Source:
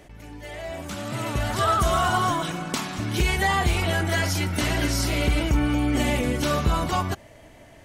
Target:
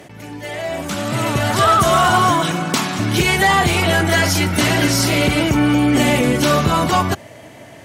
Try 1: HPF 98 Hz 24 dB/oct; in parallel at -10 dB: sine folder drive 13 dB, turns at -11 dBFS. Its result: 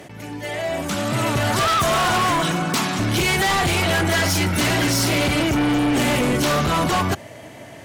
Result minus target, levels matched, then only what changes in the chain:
sine folder: distortion +18 dB
change: sine folder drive 13 dB, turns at -2.5 dBFS

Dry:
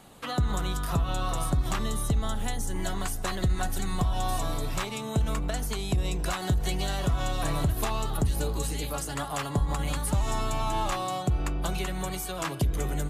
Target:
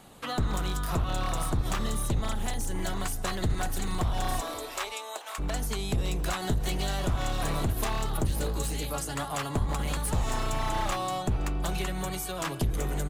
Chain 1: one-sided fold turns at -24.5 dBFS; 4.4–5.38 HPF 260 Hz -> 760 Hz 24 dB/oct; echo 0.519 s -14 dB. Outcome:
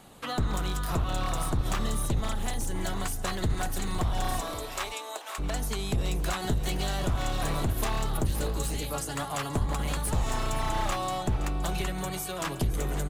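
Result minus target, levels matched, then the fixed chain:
echo-to-direct +11 dB
one-sided fold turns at -24.5 dBFS; 4.4–5.38 HPF 260 Hz -> 760 Hz 24 dB/oct; echo 0.519 s -25 dB

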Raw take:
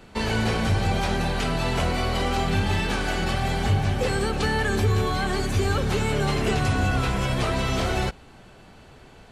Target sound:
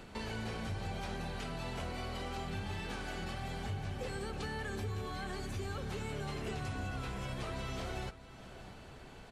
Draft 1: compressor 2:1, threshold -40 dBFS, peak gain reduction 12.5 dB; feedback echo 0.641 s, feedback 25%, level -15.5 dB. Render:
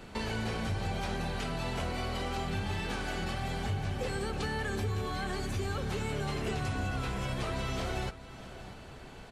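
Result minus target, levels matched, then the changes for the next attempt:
compressor: peak gain reduction -6 dB
change: compressor 2:1, threshold -51.5 dBFS, peak gain reduction 18 dB

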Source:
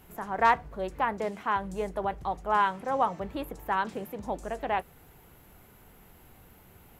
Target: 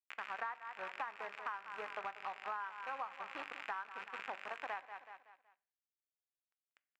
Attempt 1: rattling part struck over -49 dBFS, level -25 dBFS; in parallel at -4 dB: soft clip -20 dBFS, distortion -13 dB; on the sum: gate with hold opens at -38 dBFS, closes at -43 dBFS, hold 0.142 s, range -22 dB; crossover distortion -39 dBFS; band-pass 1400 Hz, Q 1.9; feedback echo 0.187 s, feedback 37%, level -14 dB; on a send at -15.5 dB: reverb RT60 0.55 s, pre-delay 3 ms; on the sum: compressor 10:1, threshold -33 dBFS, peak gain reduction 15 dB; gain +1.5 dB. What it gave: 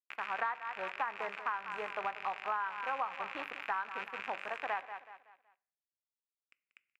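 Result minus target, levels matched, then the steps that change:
compressor: peak gain reduction -6.5 dB; crossover distortion: distortion -6 dB
change: crossover distortion -32 dBFS; change: compressor 10:1, threshold -40.5 dBFS, peak gain reduction 21 dB

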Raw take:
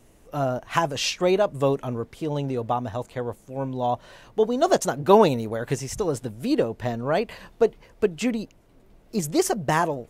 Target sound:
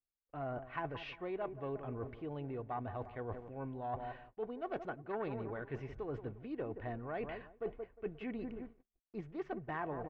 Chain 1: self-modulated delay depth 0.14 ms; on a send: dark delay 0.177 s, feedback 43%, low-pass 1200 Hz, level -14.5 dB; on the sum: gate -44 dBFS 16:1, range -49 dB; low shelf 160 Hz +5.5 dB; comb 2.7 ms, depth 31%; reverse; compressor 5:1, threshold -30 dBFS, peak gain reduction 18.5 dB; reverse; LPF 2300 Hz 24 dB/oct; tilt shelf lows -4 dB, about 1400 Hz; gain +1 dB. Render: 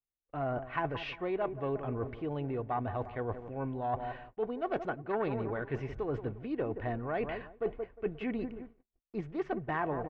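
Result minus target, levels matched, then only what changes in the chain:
compressor: peak gain reduction -7 dB
change: compressor 5:1, threshold -38.5 dBFS, peak gain reduction 25.5 dB

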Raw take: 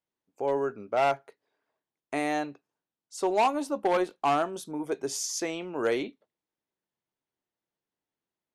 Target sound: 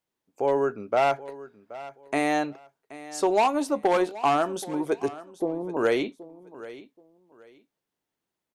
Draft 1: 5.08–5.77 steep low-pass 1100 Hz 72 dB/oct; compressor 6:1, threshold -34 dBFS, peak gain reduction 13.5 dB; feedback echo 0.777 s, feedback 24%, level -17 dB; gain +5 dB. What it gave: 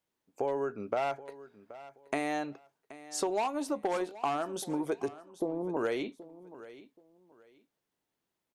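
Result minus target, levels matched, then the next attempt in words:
compressor: peak gain reduction +10 dB
5.08–5.77 steep low-pass 1100 Hz 72 dB/oct; compressor 6:1, threshold -22 dBFS, peak gain reduction 3.5 dB; feedback echo 0.777 s, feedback 24%, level -17 dB; gain +5 dB

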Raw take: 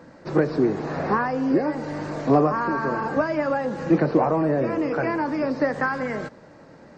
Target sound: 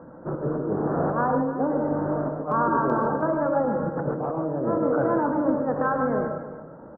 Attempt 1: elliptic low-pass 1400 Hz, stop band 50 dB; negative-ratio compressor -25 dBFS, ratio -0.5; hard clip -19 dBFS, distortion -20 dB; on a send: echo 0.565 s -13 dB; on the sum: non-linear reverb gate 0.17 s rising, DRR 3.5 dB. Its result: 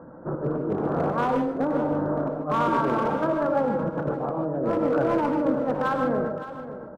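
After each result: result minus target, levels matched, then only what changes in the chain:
hard clip: distortion +38 dB; echo 0.258 s late
change: hard clip -12.5 dBFS, distortion -57 dB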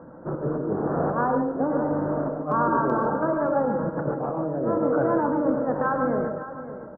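echo 0.258 s late
change: echo 0.307 s -13 dB

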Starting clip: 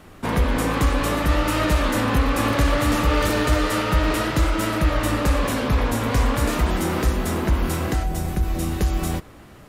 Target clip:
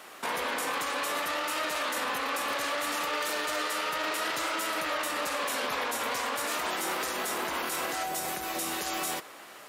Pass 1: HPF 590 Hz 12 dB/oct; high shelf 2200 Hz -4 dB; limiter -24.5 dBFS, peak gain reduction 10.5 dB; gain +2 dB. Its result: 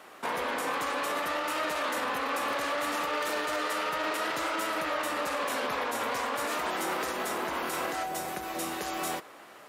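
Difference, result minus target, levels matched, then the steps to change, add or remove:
4000 Hz band -2.5 dB
change: high shelf 2200 Hz +4 dB

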